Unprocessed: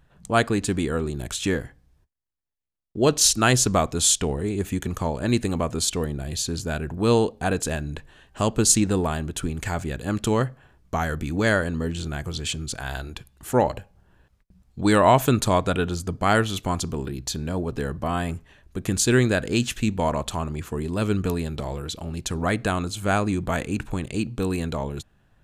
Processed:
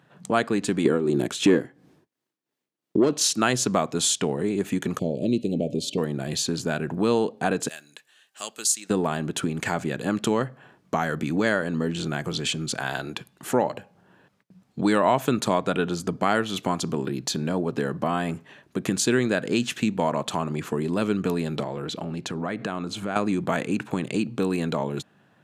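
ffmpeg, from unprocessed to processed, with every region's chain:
ffmpeg -i in.wav -filter_complex "[0:a]asettb=1/sr,asplit=3[link_01][link_02][link_03];[link_01]atrim=end=0.854[link_04];[link_02]atrim=start=0.85:end=3.13,asetpts=PTS-STARTPTS,afade=type=in:duration=0.004:curve=qsin,afade=type=out:start_time=2.276:duration=0.004:curve=qsin,equalizer=frequency=330:width=1.4:gain=9,acontrast=87,tremolo=f=2.9:d=0.68[link_05];[link_03]atrim=start=3.126[link_06];[link_04][link_05]acrossfade=duration=0.004:curve1=hsin:curve2=qsin[link_07];[link_07][link_06]acrossfade=duration=0.004:curve1=qsin:curve2=hsin,asettb=1/sr,asplit=3[link_08][link_09][link_10];[link_08]atrim=end=4.994[link_11];[link_09]atrim=start=4.99:end=5.98,asetpts=PTS-STARTPTS,afade=type=in:duration=0.004:curve=qsin,afade=type=out:start_time=0.986:duration=0.004:curve=qsin,asuperstop=centerf=1300:order=8:qfactor=0.62,equalizer=frequency=8700:width_type=o:width=2:gain=-11.5,bandreject=frequency=284.7:width_type=h:width=4,bandreject=frequency=569.4:width_type=h:width=4,bandreject=frequency=854.1:width_type=h:width=4,bandreject=frequency=1138.8:width_type=h:width=4,bandreject=frequency=1423.5:width_type=h:width=4,bandreject=frequency=1708.2:width_type=h:width=4,bandreject=frequency=1992.9:width_type=h:width=4,bandreject=frequency=2277.6:width_type=h:width=4,bandreject=frequency=2562.3:width_type=h:width=4,bandreject=frequency=2847:width_type=h:width=4,bandreject=frequency=3131.7:width_type=h:width=4,bandreject=frequency=3416.4:width_type=h:width=4,bandreject=frequency=3701.1:width_type=h:width=4,bandreject=frequency=3985.8:width_type=h:width=4,bandreject=frequency=4270.5:width_type=h:width=4,bandreject=frequency=4555.2:width_type=h:width=4[link_12];[link_10]atrim=start=5.976[link_13];[link_11][link_12]acrossfade=duration=0.004:curve1=hsin:curve2=qsin[link_14];[link_14][link_13]acrossfade=duration=0.004:curve1=qsin:curve2=hsin,asettb=1/sr,asplit=3[link_15][link_16][link_17];[link_15]atrim=end=7.684[link_18];[link_16]atrim=start=7.68:end=8.9,asetpts=PTS-STARTPTS,afade=type=in:duration=0.004:curve=qsin,afade=type=out:start_time=1.216:duration=0.004:curve=qsin,aderivative,bandreject=frequency=970:width=10[link_19];[link_17]atrim=start=8.896[link_20];[link_18][link_19]acrossfade=duration=0.004:curve1=hsin:curve2=qsin[link_21];[link_21][link_20]acrossfade=duration=0.004:curve1=qsin:curve2=hsin,asettb=1/sr,asplit=3[link_22][link_23][link_24];[link_22]atrim=end=21.634[link_25];[link_23]atrim=start=21.63:end=23.16,asetpts=PTS-STARTPTS,afade=type=in:duration=0.004:curve=qsin,afade=type=out:start_time=1.526:duration=0.004:curve=qsin,aemphasis=mode=reproduction:type=cd,acompressor=threshold=-30dB:ratio=6:attack=3.2:release=140:knee=1:detection=peak[link_26];[link_24]atrim=start=23.156[link_27];[link_25][link_26]acrossfade=duration=0.004:curve1=hsin:curve2=qsin[link_28];[link_28][link_27]acrossfade=duration=0.004:curve1=qsin:curve2=hsin,highpass=frequency=150:width=0.5412,highpass=frequency=150:width=1.3066,highshelf=frequency=6400:gain=-8.5,acompressor=threshold=-31dB:ratio=2,volume=6.5dB" out.wav

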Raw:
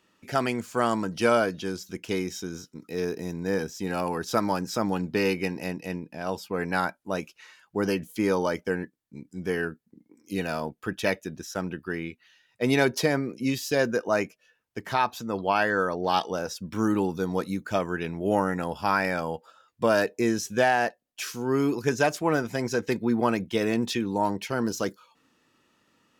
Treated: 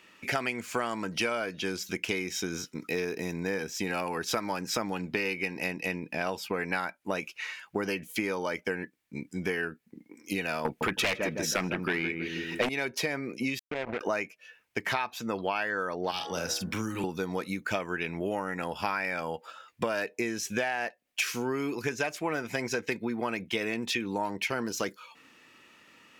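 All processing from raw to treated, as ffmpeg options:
ffmpeg -i in.wav -filter_complex "[0:a]asettb=1/sr,asplit=3[link_01][link_02][link_03];[link_01]atrim=end=10.654[link_04];[link_02]atrim=start=10.65:end=12.69,asetpts=PTS-STARTPTS,afade=type=in:duration=0.004:curve=qsin,afade=type=out:start_time=2.036:duration=0.004:curve=qsin,asplit=2[link_05][link_06];[link_06]adelay=159,lowpass=frequency=1000:poles=1,volume=-7.5dB,asplit=2[link_07][link_08];[link_08]adelay=159,lowpass=frequency=1000:poles=1,volume=0.37,asplit=2[link_09][link_10];[link_10]adelay=159,lowpass=frequency=1000:poles=1,volume=0.37,asplit=2[link_11][link_12];[link_12]adelay=159,lowpass=frequency=1000:poles=1,volume=0.37[link_13];[link_05][link_07][link_09][link_11][link_13]amix=inputs=5:normalize=0,atrim=end_sample=89964,aeval=exprs='0.335*sin(PI/2*4.47*val(0)/0.335)':channel_layout=same[link_14];[link_03]atrim=start=12.686[link_15];[link_04][link_14]acrossfade=duration=0.004:curve1=hsin:curve2=qsin[link_16];[link_16][link_15]acrossfade=duration=0.004:curve1=qsin:curve2=hsin,asettb=1/sr,asplit=3[link_17][link_18][link_19];[link_17]atrim=end=13.594[link_20];[link_18]atrim=start=13.59:end=14.01,asetpts=PTS-STARTPTS,afade=type=in:duration=0.004:curve=qsin,afade=type=out:start_time=0.416:duration=0.004:curve=qsin,lowpass=frequency=1100:width=0.5412,lowpass=frequency=1100:width=1.3066,acompressor=threshold=-36dB:ratio=6:attack=3.2:release=140:knee=1:detection=peak,acrusher=bits=5:mix=0:aa=0.5[link_21];[link_19]atrim=start=14.006[link_22];[link_20][link_21]acrossfade=duration=0.004:curve1=hsin:curve2=qsin[link_23];[link_23][link_22]acrossfade=duration=0.004:curve1=qsin:curve2=hsin,asettb=1/sr,asplit=3[link_24][link_25][link_26];[link_24]atrim=end=16.114[link_27];[link_25]atrim=start=16.11:end=17.04,asetpts=PTS-STARTPTS,afade=type=in:duration=0.004:curve=qsin,afade=type=out:start_time=0.926:duration=0.004:curve=qsin,bandreject=frequency=69.42:width_type=h:width=4,bandreject=frequency=138.84:width_type=h:width=4,bandreject=frequency=208.26:width_type=h:width=4,bandreject=frequency=277.68:width_type=h:width=4,bandreject=frequency=347.1:width_type=h:width=4,bandreject=frequency=416.52:width_type=h:width=4,bandreject=frequency=485.94:width_type=h:width=4,bandreject=frequency=555.36:width_type=h:width=4,bandreject=frequency=624.78:width_type=h:width=4,bandreject=frequency=694.2:width_type=h:width=4,bandreject=frequency=763.62:width_type=h:width=4,bandreject=frequency=833.04:width_type=h:width=4,bandreject=frequency=902.46:width_type=h:width=4,bandreject=frequency=971.88:width_type=h:width=4,bandreject=frequency=1041.3:width_type=h:width=4,bandreject=frequency=1110.72:width_type=h:width=4,bandreject=frequency=1180.14:width_type=h:width=4,bandreject=frequency=1249.56:width_type=h:width=4,bandreject=frequency=1318.98:width_type=h:width=4,bandreject=frequency=1388.4:width_type=h:width=4,bandreject=frequency=1457.82:width_type=h:width=4,bandreject=frequency=1527.24:width_type=h:width=4,bandreject=frequency=1596.66:width_type=h:width=4,bandreject=frequency=1666.08:width_type=h:width=4,bandreject=frequency=1735.5:width_type=h:width=4,bandreject=frequency=1804.92:width_type=h:width=4,bandreject=frequency=1874.34:width_type=h:width=4,bandreject=frequency=1943.76:width_type=h:width=4,bandreject=frequency=2013.18:width_type=h:width=4,bandreject=frequency=2082.6:width_type=h:width=4,acrossover=split=180|3000[link_28][link_29][link_30];[link_29]acompressor=threshold=-41dB:ratio=2:attack=3.2:release=140:knee=2.83:detection=peak[link_31];[link_28][link_31][link_30]amix=inputs=3:normalize=0,asplit=2[link_32][link_33];[link_33]adelay=46,volume=-8.5dB[link_34];[link_32][link_34]amix=inputs=2:normalize=0,atrim=end_sample=41013[link_35];[link_26]atrim=start=17.036[link_36];[link_27][link_35]acrossfade=duration=0.004:curve1=hsin:curve2=qsin[link_37];[link_37][link_36]acrossfade=duration=0.004:curve1=qsin:curve2=hsin,equalizer=frequency=2300:width_type=o:width=0.74:gain=9.5,acompressor=threshold=-33dB:ratio=12,lowshelf=frequency=210:gain=-6.5,volume=7dB" out.wav

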